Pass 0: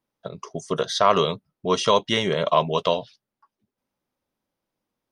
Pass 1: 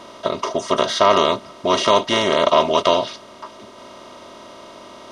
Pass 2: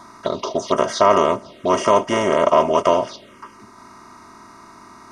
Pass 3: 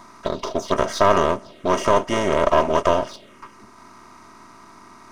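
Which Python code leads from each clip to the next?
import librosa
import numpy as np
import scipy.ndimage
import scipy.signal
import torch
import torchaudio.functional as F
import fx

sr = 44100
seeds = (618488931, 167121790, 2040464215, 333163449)

y1 = fx.bin_compress(x, sr, power=0.4)
y1 = y1 + 0.61 * np.pad(y1, (int(3.2 * sr / 1000.0), 0))[:len(y1)]
y1 = y1 * 10.0 ** (-1.0 / 20.0)
y2 = fx.env_phaser(y1, sr, low_hz=450.0, high_hz=3900.0, full_db=-16.0)
y2 = y2 * 10.0 ** (1.0 / 20.0)
y3 = np.where(y2 < 0.0, 10.0 ** (-7.0 / 20.0) * y2, y2)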